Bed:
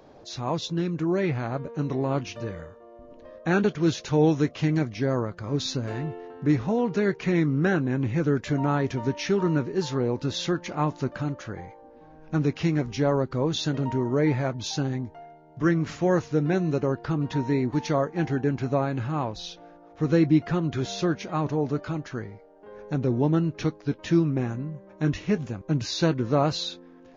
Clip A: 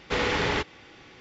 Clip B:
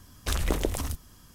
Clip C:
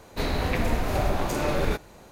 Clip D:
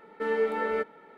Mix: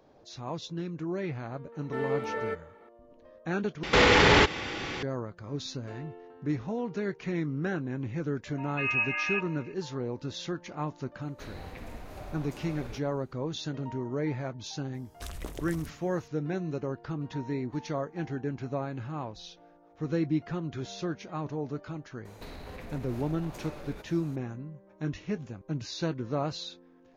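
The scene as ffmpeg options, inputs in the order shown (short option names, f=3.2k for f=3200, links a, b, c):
-filter_complex "[4:a]asplit=2[a][b];[3:a]asplit=2[c][d];[0:a]volume=-8.5dB[e];[1:a]alimiter=level_in=25dB:limit=-1dB:release=50:level=0:latency=1[f];[b]lowpass=f=2.6k:t=q:w=0.5098,lowpass=f=2.6k:t=q:w=0.6013,lowpass=f=2.6k:t=q:w=0.9,lowpass=f=2.6k:t=q:w=2.563,afreqshift=-3000[g];[d]acompressor=threshold=-37dB:ratio=6:attack=3.2:release=140:knee=1:detection=peak[h];[e]asplit=2[i][j];[i]atrim=end=3.834[k];[f]atrim=end=1.2,asetpts=PTS-STARTPTS,volume=-10dB[l];[j]atrim=start=5.026[m];[a]atrim=end=1.17,asetpts=PTS-STARTPTS,volume=-4.5dB,afade=t=in:d=0.004:c=hsin,afade=t=out:st=1.166:d=0.004:c=hsin,adelay=1720[n];[g]atrim=end=1.17,asetpts=PTS-STARTPTS,volume=-2.5dB,afade=t=in:d=0.004:c=hsin,afade=t=out:st=1.166:d=0.004:c=hsin,adelay=8570[o];[c]atrim=end=2.11,asetpts=PTS-STARTPTS,volume=-18dB,afade=t=in:d=0.004:c=hsin,afade=t=out:st=2.106:d=0.004:c=hsin,adelay=494802S[p];[2:a]atrim=end=1.34,asetpts=PTS-STARTPTS,volume=-12.5dB,afade=t=in:d=0.004:c=hsin,afade=t=out:st=1.336:d=0.004:c=hsin,adelay=14940[q];[h]atrim=end=2.11,asetpts=PTS-STARTPTS,volume=-3.5dB,afade=t=in:d=0.004:c=hsin,afade=t=out:st=2.106:d=0.004:c=hsin,adelay=22250[r];[k][l]acrossfade=d=0.004:c1=hsin:c2=hsin[s];[s][m]acrossfade=d=0.004:c1=hsin:c2=hsin[t];[t][n][o][p][q][r]amix=inputs=6:normalize=0"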